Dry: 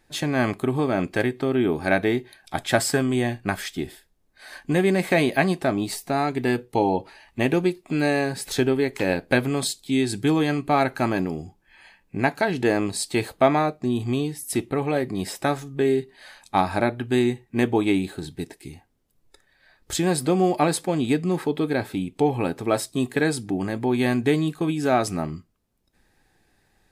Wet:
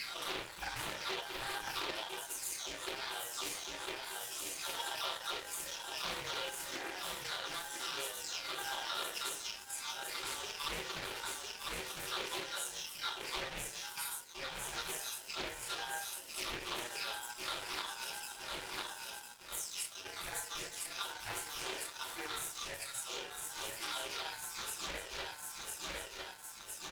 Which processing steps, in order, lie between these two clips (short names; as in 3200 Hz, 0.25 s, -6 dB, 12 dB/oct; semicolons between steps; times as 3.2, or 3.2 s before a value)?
spectral delay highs early, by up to 0.375 s; feedback echo 1.003 s, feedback 56%, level -9 dB; dynamic EQ 2500 Hz, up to +5 dB, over -41 dBFS, Q 0.99; reverb removal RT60 0.59 s; differentiator; compressor 10:1, threshold -48 dBFS, peak gain reduction 25.5 dB; reverb RT60 0.60 s, pre-delay 3 ms, DRR -10 dB; ring modulator 1200 Hz; crossover distortion -53 dBFS; Doppler distortion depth 0.6 ms; gain +5.5 dB